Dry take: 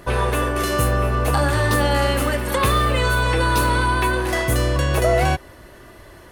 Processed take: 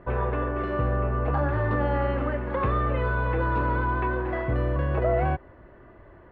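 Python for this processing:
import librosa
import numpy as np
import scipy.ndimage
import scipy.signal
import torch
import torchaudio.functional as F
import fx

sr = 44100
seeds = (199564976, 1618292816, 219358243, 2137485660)

y = scipy.signal.sosfilt(scipy.signal.bessel(4, 1400.0, 'lowpass', norm='mag', fs=sr, output='sos'), x)
y = y * librosa.db_to_amplitude(-5.5)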